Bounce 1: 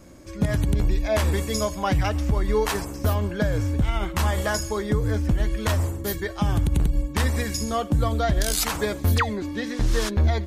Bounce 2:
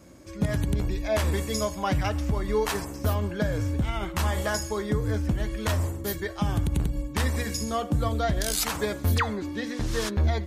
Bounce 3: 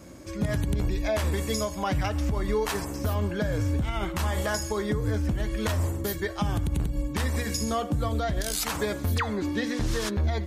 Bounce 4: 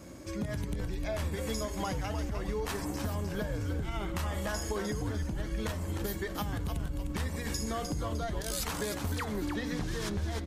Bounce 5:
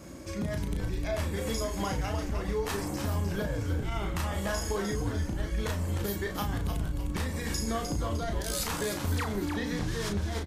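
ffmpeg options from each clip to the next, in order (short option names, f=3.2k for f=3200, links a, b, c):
-af "highpass=54,bandreject=f=119.1:t=h:w=4,bandreject=f=238.2:t=h:w=4,bandreject=f=357.3:t=h:w=4,bandreject=f=476.4:t=h:w=4,bandreject=f=595.5:t=h:w=4,bandreject=f=714.6:t=h:w=4,bandreject=f=833.7:t=h:w=4,bandreject=f=952.8:t=h:w=4,bandreject=f=1.0719k:t=h:w=4,bandreject=f=1.191k:t=h:w=4,bandreject=f=1.3101k:t=h:w=4,bandreject=f=1.4292k:t=h:w=4,bandreject=f=1.5483k:t=h:w=4,bandreject=f=1.6674k:t=h:w=4,bandreject=f=1.7865k:t=h:w=4,bandreject=f=1.9056k:t=h:w=4,bandreject=f=2.0247k:t=h:w=4,volume=-2.5dB"
-af "alimiter=limit=-22dB:level=0:latency=1:release=259,volume=4.5dB"
-filter_complex "[0:a]acompressor=threshold=-30dB:ratio=6,asplit=6[a][b][c][d][e][f];[b]adelay=304,afreqshift=-130,volume=-6dB[g];[c]adelay=608,afreqshift=-260,volume=-14dB[h];[d]adelay=912,afreqshift=-390,volume=-21.9dB[i];[e]adelay=1216,afreqshift=-520,volume=-29.9dB[j];[f]adelay=1520,afreqshift=-650,volume=-37.8dB[k];[a][g][h][i][j][k]amix=inputs=6:normalize=0,volume=-1.5dB"
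-filter_complex "[0:a]asplit=2[a][b];[b]adelay=35,volume=-5dB[c];[a][c]amix=inputs=2:normalize=0,volume=1.5dB"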